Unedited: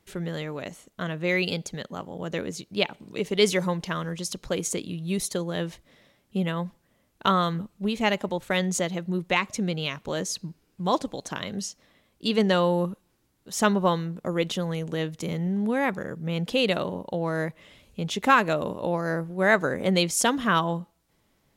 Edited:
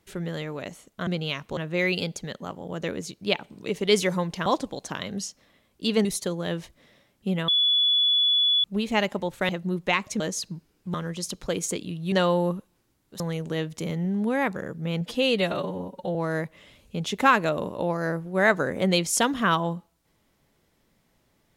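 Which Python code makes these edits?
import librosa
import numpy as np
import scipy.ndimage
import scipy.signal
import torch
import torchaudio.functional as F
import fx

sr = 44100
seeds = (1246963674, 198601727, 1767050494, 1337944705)

y = fx.edit(x, sr, fx.swap(start_s=3.96, length_s=1.18, other_s=10.87, other_length_s=1.59),
    fx.bleep(start_s=6.57, length_s=1.16, hz=3420.0, db=-18.0),
    fx.cut(start_s=8.58, length_s=0.34),
    fx.move(start_s=9.63, length_s=0.5, to_s=1.07),
    fx.cut(start_s=13.54, length_s=1.08),
    fx.stretch_span(start_s=16.43, length_s=0.76, factor=1.5), tone=tone)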